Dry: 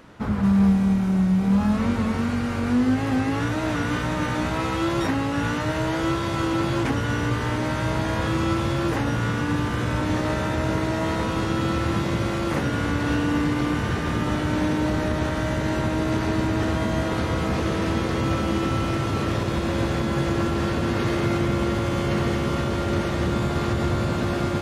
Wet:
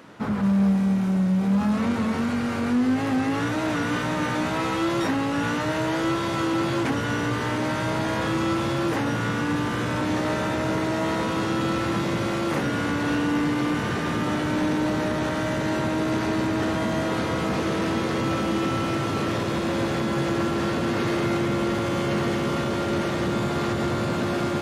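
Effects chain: high-pass 140 Hz 12 dB/octave; in parallel at +2 dB: saturation -23.5 dBFS, distortion -12 dB; on the sum: trim -5 dB

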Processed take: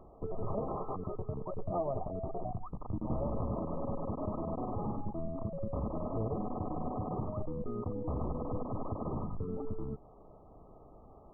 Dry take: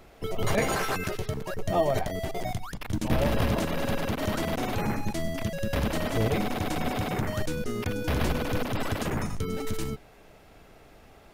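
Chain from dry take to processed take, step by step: compression 2:1, threshold -34 dBFS, peak gain reduction 8.5 dB; brick-wall FIR low-pass 1.3 kHz; trim -2 dB

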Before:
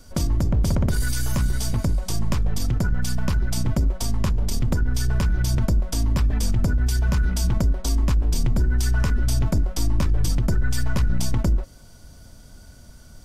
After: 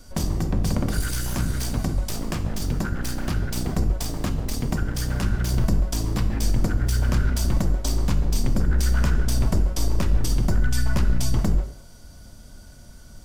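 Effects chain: one-sided wavefolder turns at -22 dBFS; gated-style reverb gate 270 ms falling, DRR 8 dB

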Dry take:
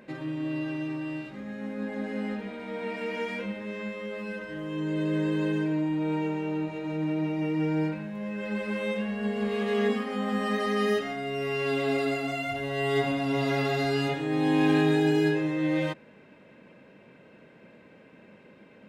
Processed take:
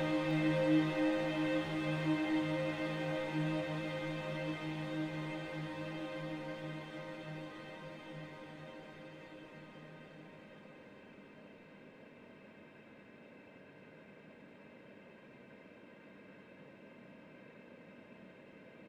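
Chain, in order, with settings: Chebyshev shaper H 8 -24 dB, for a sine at -12 dBFS; Paulstretch 28×, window 1.00 s, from 15.92 s; delay 310 ms -9 dB; trim -3.5 dB

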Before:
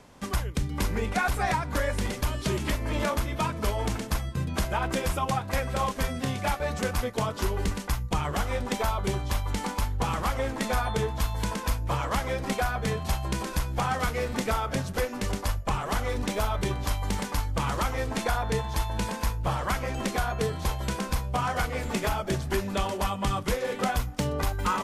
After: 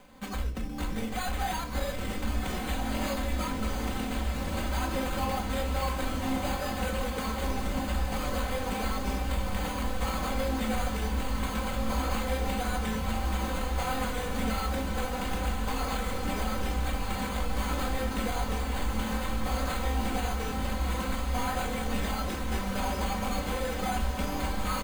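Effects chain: treble shelf 9.5 kHz +10.5 dB; careless resampling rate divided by 8×, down none, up hold; hard clipper -28.5 dBFS, distortion -8 dB; comb 3.9 ms, depth 65%; echo that smears into a reverb 1483 ms, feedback 68%, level -4 dB; simulated room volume 250 m³, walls furnished, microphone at 1.1 m; trim -5 dB

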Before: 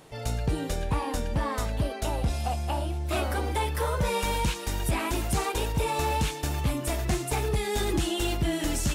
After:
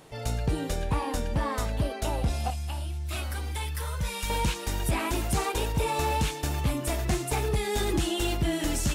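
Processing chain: 2.50–4.30 s: peaking EQ 500 Hz -13.5 dB 2.8 oct

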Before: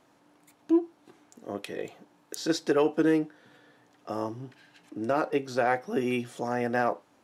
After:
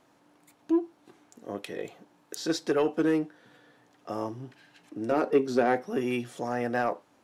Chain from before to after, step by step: 5.11–5.83 s: small resonant body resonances 250/390 Hz, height 11 dB; in parallel at -3 dB: saturation -21 dBFS, distortion -10 dB; on the sum: trim -5 dB

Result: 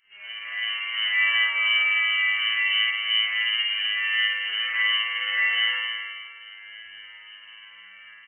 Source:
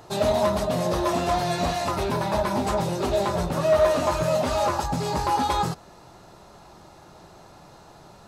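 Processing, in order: 1.81–4.39 s: treble shelf 2.1 kHz -12 dB; level rider gain up to 13 dB; static phaser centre 1.2 kHz, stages 4; crackle 20 per s -31 dBFS; feedback comb 53 Hz, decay 0.94 s, harmonics odd, mix 100%; feedback delay 316 ms, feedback 24%, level -11.5 dB; spring tank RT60 1.5 s, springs 52 ms, chirp 25 ms, DRR -6 dB; frequency inversion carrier 3 kHz; trim +2.5 dB

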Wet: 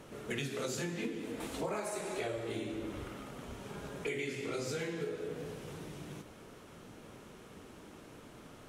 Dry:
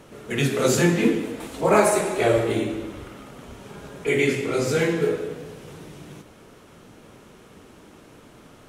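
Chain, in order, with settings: dynamic bell 4.7 kHz, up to +5 dB, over -43 dBFS, Q 0.73; compression 10:1, threshold -30 dBFS, peak gain reduction 19 dB; trim -4.5 dB

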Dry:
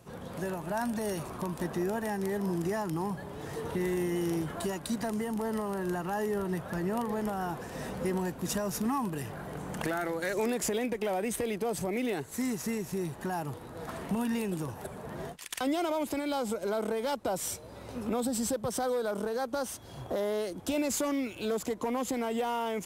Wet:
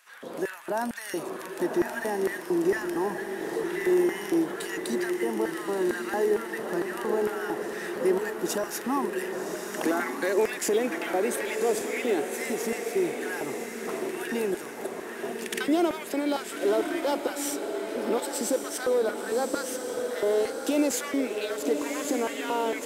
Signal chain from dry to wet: LFO high-pass square 2.2 Hz 340–1700 Hz; echo that smears into a reverb 1128 ms, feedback 49%, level -5.5 dB; trim +2 dB

